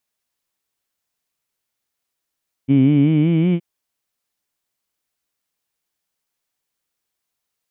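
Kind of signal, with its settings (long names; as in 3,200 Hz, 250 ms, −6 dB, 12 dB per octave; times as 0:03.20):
vowel by formant synthesis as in heed, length 0.92 s, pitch 131 Hz, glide +5.5 semitones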